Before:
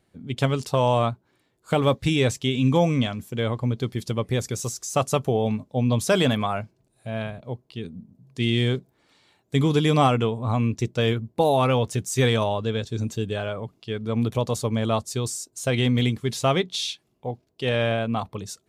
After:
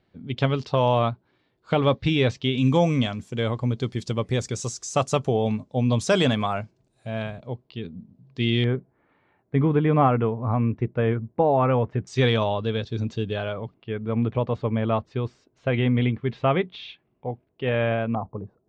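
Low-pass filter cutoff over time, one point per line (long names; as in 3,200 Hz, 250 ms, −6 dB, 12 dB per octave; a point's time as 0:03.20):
low-pass filter 24 dB per octave
4,600 Hz
from 0:02.58 7,700 Hz
from 0:07.47 4,500 Hz
from 0:08.64 2,000 Hz
from 0:12.07 4,700 Hz
from 0:13.74 2,600 Hz
from 0:18.15 1,000 Hz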